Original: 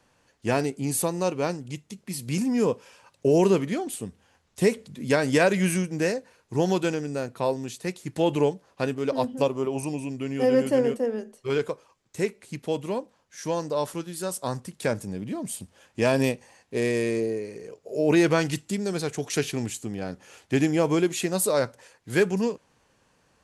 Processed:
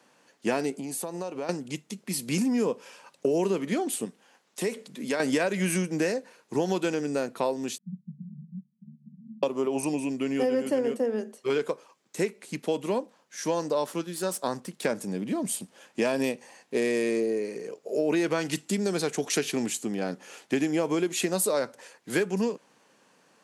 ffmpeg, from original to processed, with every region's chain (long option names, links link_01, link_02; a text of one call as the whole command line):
ffmpeg -i in.wav -filter_complex "[0:a]asettb=1/sr,asplit=3[link_01][link_02][link_03];[link_01]atrim=end=0.744[link_04];[link_02]atrim=start=0.74:end=1.49,asetpts=PTS-STARTPTS,afade=type=in:duration=0.004:curve=qsin,afade=type=out:start_time=0.746:duration=0.004:curve=qsin,equalizer=frequency=700:width_type=o:width=1:gain=5,acompressor=threshold=-33dB:ratio=8:attack=3.2:release=140:knee=1:detection=peak[link_05];[link_03]atrim=start=1.486[link_06];[link_04][link_05]acrossfade=duration=0.004:curve1=hsin:curve2=qsin[link_07];[link_07][link_06]acrossfade=duration=0.004:curve1=qsin:curve2=hsin,asettb=1/sr,asplit=3[link_08][link_09][link_10];[link_08]atrim=end=4.054[link_11];[link_09]atrim=start=4.05:end=5.2,asetpts=PTS-STARTPTS,afade=type=in:duration=0.004:curve=qsin,afade=type=out:start_time=1.146:duration=0.004:curve=qsin,highpass=frequency=260:poles=1,acompressor=threshold=-32dB:ratio=2:attack=3.2:release=140:knee=1:detection=peak[link_12];[link_10]atrim=start=5.196[link_13];[link_11][link_12]acrossfade=duration=0.004:curve1=hsin:curve2=qsin[link_14];[link_14][link_13]acrossfade=duration=0.004:curve1=qsin:curve2=hsin,asettb=1/sr,asplit=3[link_15][link_16][link_17];[link_15]atrim=end=7.784[link_18];[link_16]atrim=start=7.78:end=9.43,asetpts=PTS-STARTPTS,afade=type=in:duration=0.004:curve=qsin,afade=type=out:start_time=1.646:duration=0.004:curve=qsin,aecho=1:1:5:0.39,atrim=end_sample=72765,aeval=exprs='0.0501*(abs(mod(val(0)/0.0501+3,4)-2)-1)':channel_layout=same,asuperpass=centerf=180:order=20:qfactor=2.2[link_19];[link_17]atrim=start=9.426[link_20];[link_18][link_19]acrossfade=duration=0.004:curve1=hsin:curve2=qsin[link_21];[link_21][link_20]acrossfade=duration=0.004:curve1=qsin:curve2=hsin,asettb=1/sr,asplit=3[link_22][link_23][link_24];[link_22]atrim=end=13.844[link_25];[link_23]atrim=start=13.84:end=14.9,asetpts=PTS-STARTPTS,afade=type=in:duration=0.004:curve=qsin,afade=type=out:start_time=1.056:duration=0.004:curve=qsin,aeval=exprs='if(lt(val(0),0),0.708*val(0),val(0))':channel_layout=same,equalizer=frequency=9100:width=1:gain=-3[link_26];[link_24]atrim=start=14.896[link_27];[link_25][link_26]acrossfade=duration=0.004:curve1=hsin:curve2=qsin[link_28];[link_28][link_27]acrossfade=duration=0.004:curve1=qsin:curve2=hsin,highpass=frequency=180:width=0.5412,highpass=frequency=180:width=1.3066,acompressor=threshold=-26dB:ratio=6,volume=3.5dB" out.wav